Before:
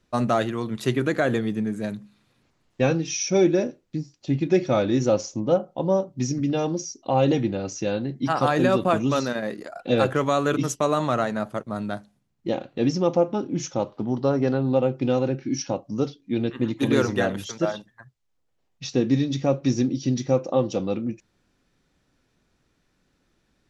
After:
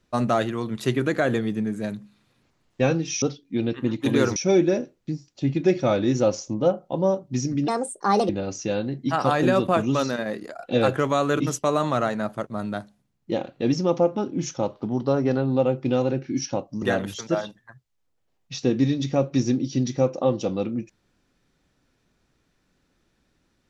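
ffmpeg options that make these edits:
ffmpeg -i in.wav -filter_complex "[0:a]asplit=6[link_01][link_02][link_03][link_04][link_05][link_06];[link_01]atrim=end=3.222[link_07];[link_02]atrim=start=15.988:end=17.132[link_08];[link_03]atrim=start=3.218:end=6.544[link_09];[link_04]atrim=start=6.54:end=7.46,asetpts=PTS-STARTPTS,asetrate=66150,aresample=44100[link_10];[link_05]atrim=start=7.456:end=15.992[link_11];[link_06]atrim=start=17.128[link_12];[link_07][link_08]acrossfade=duration=0.004:curve1=hsin:curve2=hsin[link_13];[link_13][link_09]acrossfade=duration=0.004:curve1=hsin:curve2=hsin[link_14];[link_14][link_10]acrossfade=duration=0.004:curve1=hsin:curve2=hsin[link_15];[link_15][link_11]acrossfade=duration=0.004:curve1=hsin:curve2=hsin[link_16];[link_16][link_12]acrossfade=duration=0.004:curve1=hsin:curve2=hsin" out.wav

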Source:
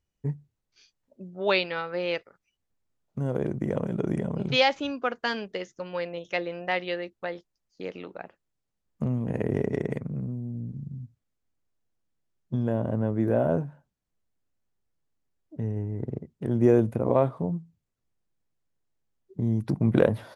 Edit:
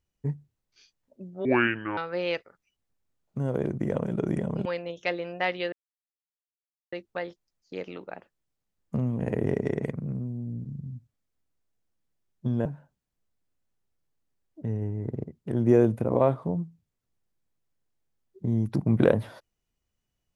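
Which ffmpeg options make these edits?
ffmpeg -i in.wav -filter_complex "[0:a]asplit=6[link_01][link_02][link_03][link_04][link_05][link_06];[link_01]atrim=end=1.454[link_07];[link_02]atrim=start=1.45:end=1.78,asetpts=PTS-STARTPTS,asetrate=27783,aresample=44100[link_08];[link_03]atrim=start=1.776:end=4.462[link_09];[link_04]atrim=start=5.928:end=7,asetpts=PTS-STARTPTS,afade=type=out:start_time=1.068:duration=0.004:curve=hsin,apad=pad_dur=1.2[link_10];[link_05]atrim=start=7:end=12.732,asetpts=PTS-STARTPTS,afade=type=in:duration=0.004:curve=hsin[link_11];[link_06]atrim=start=13.598[link_12];[link_07][link_08]acrossfade=duration=0.004:curve1=hsin:curve2=hsin[link_13];[link_13][link_09]acrossfade=duration=0.004:curve1=hsin:curve2=hsin[link_14];[link_10][link_11]concat=n=2:v=0:a=1[link_15];[link_14][link_15]acrossfade=duration=0.004:curve1=hsin:curve2=hsin[link_16];[link_16][link_12]acrossfade=duration=0.004:curve1=hsin:curve2=hsin" out.wav

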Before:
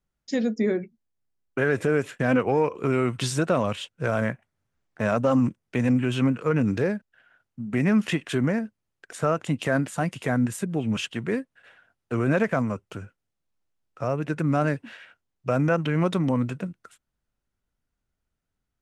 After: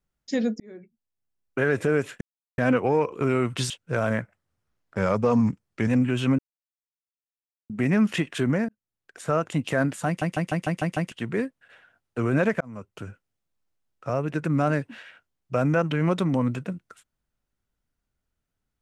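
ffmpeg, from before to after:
ffmpeg -i in.wav -filter_complex "[0:a]asplit=17[link_01][link_02][link_03][link_04][link_05][link_06][link_07][link_08][link_09][link_10][link_11][link_12][link_13][link_14][link_15][link_16][link_17];[link_01]atrim=end=0.6,asetpts=PTS-STARTPTS,afade=type=out:start_time=0.596:duration=0.004:curve=hsin[link_18];[link_02]atrim=start=0.6:end=2.21,asetpts=PTS-STARTPTS,afade=type=in:duration=1.01,afade=type=out:start_time=1.606:duration=0.004:curve=hsin,apad=pad_dur=0.37[link_19];[link_03]atrim=start=2.21:end=3.332,asetpts=PTS-STARTPTS,afade=type=in:duration=0.004:curve=hsin[link_20];[link_04]atrim=start=3.808:end=4.324[link_21];[link_05]atrim=start=4.32:end=5.82,asetpts=PTS-STARTPTS,asetrate=39690,aresample=44100[link_22];[link_06]atrim=start=5.816:end=6.33,asetpts=PTS-STARTPTS,afade=type=out:start_time=0.51:duration=0.004:curve=hsin[link_23];[link_07]atrim=start=6.33:end=7.64,asetpts=PTS-STARTPTS,volume=0[link_24];[link_08]atrim=start=7.64:end=8.63,asetpts=PTS-STARTPTS,afade=type=in:duration=0.004:curve=hsin,afade=type=out:start_time=0.986:duration=0.004:curve=hsin[link_25];[link_09]atrim=start=8.63:end=10.162,asetpts=PTS-STARTPTS,afade=type=in:duration=0.69[link_26];[link_10]atrim=start=10.008:end=10.162[link_27];[link_11]atrim=start=10.008:end=10.162[link_28];[link_12]atrim=start=10.008:end=10.162[link_29];[link_13]atrim=start=10.008:end=10.162[link_30];[link_14]atrim=start=10.008:end=10.162[link_31];[link_15]atrim=start=10.008:end=10.162[link_32];[link_16]atrim=start=11.058:end=12.55,asetpts=PTS-STARTPTS,afade=type=out:start_time=1.488:duration=0.004:curve=hsin[link_33];[link_17]atrim=start=12.55,asetpts=PTS-STARTPTS,afade=type=in:duration=0.47[link_34];[link_18][link_19][link_20]concat=n=3:v=0:a=1[link_35];[link_35][link_21]acrossfade=duration=0.004:curve1=hsin:curve2=hsin[link_36];[link_36][link_22]acrossfade=duration=0.004:curve1=hsin:curve2=hsin[link_37];[link_23][link_24][link_25][link_26]concat=n=4:v=0:a=1[link_38];[link_37][link_38]acrossfade=duration=0.004:curve1=hsin:curve2=hsin[link_39];[link_39][link_27]acrossfade=duration=0.004:curve1=hsin:curve2=hsin[link_40];[link_40][link_28]acrossfade=duration=0.004:curve1=hsin:curve2=hsin[link_41];[link_41][link_29]acrossfade=duration=0.004:curve1=hsin:curve2=hsin[link_42];[link_42][link_30]acrossfade=duration=0.004:curve1=hsin:curve2=hsin[link_43];[link_43][link_31]acrossfade=duration=0.004:curve1=hsin:curve2=hsin[link_44];[link_44][link_32]acrossfade=duration=0.004:curve1=hsin:curve2=hsin[link_45];[link_33][link_34]concat=n=2:v=0:a=1[link_46];[link_45][link_46]acrossfade=duration=0.004:curve1=hsin:curve2=hsin" out.wav

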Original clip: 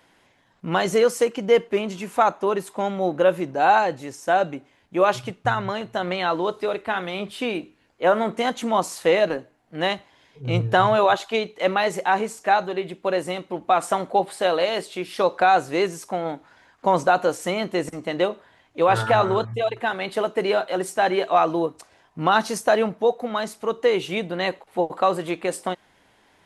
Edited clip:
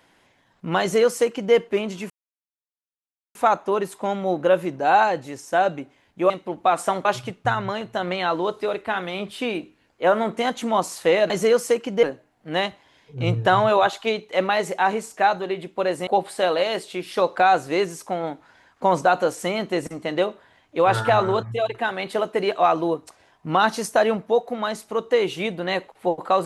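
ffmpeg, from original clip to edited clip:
ffmpeg -i in.wav -filter_complex "[0:a]asplit=8[link_01][link_02][link_03][link_04][link_05][link_06][link_07][link_08];[link_01]atrim=end=2.1,asetpts=PTS-STARTPTS,afade=type=out:start_time=2.096:duration=0.004:curve=hsin,apad=pad_dur=1.25[link_09];[link_02]atrim=start=2.1:end=5.052,asetpts=PTS-STARTPTS,afade=type=in:duration=0.004:curve=hsin[link_10];[link_03]atrim=start=13.338:end=14.092[link_11];[link_04]atrim=start=5.048:end=9.302[link_12];[link_05]atrim=start=0.808:end=1.542[link_13];[link_06]atrim=start=9.298:end=13.342[link_14];[link_07]atrim=start=14.088:end=20.532[link_15];[link_08]atrim=start=21.228[link_16];[link_09][link_10]concat=n=2:v=0:a=1[link_17];[link_17][link_11]acrossfade=duration=0.004:curve1=hsin:curve2=hsin[link_18];[link_18][link_12]acrossfade=duration=0.004:curve1=hsin:curve2=hsin[link_19];[link_19][link_13]acrossfade=duration=0.004:curve1=hsin:curve2=hsin[link_20];[link_20][link_14]acrossfade=duration=0.004:curve1=hsin:curve2=hsin[link_21];[link_21][link_15]acrossfade=duration=0.004:curve1=hsin:curve2=hsin[link_22];[link_22][link_16]acrossfade=duration=0.004:curve1=hsin:curve2=hsin" out.wav

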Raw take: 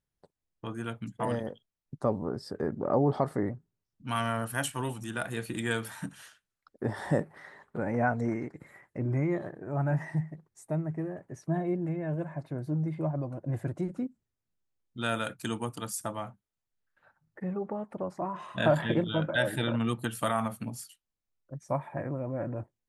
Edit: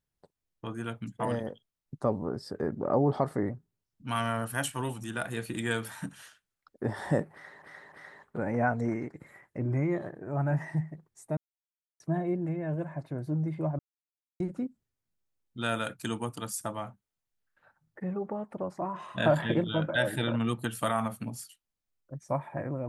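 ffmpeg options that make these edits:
ffmpeg -i in.wav -filter_complex "[0:a]asplit=7[link_01][link_02][link_03][link_04][link_05][link_06][link_07];[link_01]atrim=end=7.622[link_08];[link_02]atrim=start=7.318:end=7.622[link_09];[link_03]atrim=start=7.318:end=10.77,asetpts=PTS-STARTPTS,afade=type=out:start_time=3.448:duration=0.004:curve=hsin[link_10];[link_04]atrim=start=10.77:end=11.4,asetpts=PTS-STARTPTS,volume=0[link_11];[link_05]atrim=start=11.4:end=13.19,asetpts=PTS-STARTPTS,afade=type=in:duration=0.004:curve=hsin,afade=type=out:start_time=1.786:duration=0.004:curve=hsin[link_12];[link_06]atrim=start=13.19:end=13.8,asetpts=PTS-STARTPTS,volume=0[link_13];[link_07]atrim=start=13.8,asetpts=PTS-STARTPTS,afade=type=in:duration=0.004:curve=hsin[link_14];[link_08][link_09]acrossfade=duration=0.004:curve1=hsin:curve2=hsin[link_15];[link_10][link_11][link_12][link_13][link_14]concat=n=5:v=0:a=1[link_16];[link_15][link_16]acrossfade=duration=0.004:curve1=hsin:curve2=hsin" out.wav

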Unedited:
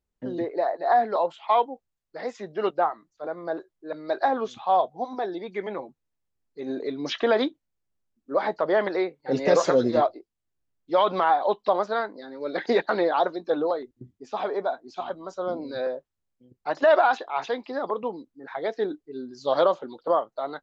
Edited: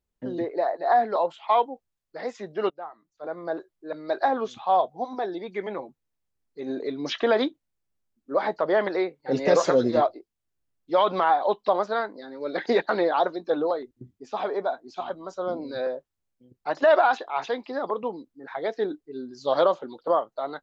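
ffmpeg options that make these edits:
ffmpeg -i in.wav -filter_complex "[0:a]asplit=2[link_01][link_02];[link_01]atrim=end=2.7,asetpts=PTS-STARTPTS,afade=type=out:start_time=2.696:duration=0.004:curve=hsin:silence=0.149624[link_03];[link_02]atrim=start=2.7,asetpts=PTS-STARTPTS,afade=type=in:duration=0.64:curve=qua:silence=0.149624[link_04];[link_03][link_04]concat=n=2:v=0:a=1" out.wav

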